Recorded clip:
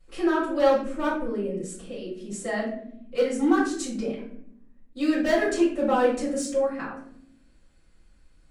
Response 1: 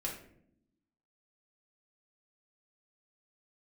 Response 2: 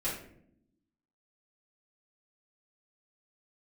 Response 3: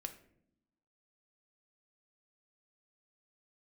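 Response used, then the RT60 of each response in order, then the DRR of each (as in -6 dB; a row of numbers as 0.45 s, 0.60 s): 2; 0.70 s, 0.70 s, 0.70 s; -3.0 dB, -10.5 dB, 6.0 dB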